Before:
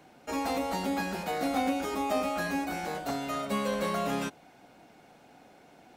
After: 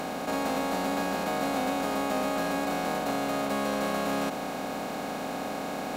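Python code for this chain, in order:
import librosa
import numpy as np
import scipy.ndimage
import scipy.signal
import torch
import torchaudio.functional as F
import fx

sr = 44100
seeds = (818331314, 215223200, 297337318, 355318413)

y = fx.bin_compress(x, sr, power=0.2)
y = y * 10.0 ** (-5.5 / 20.0)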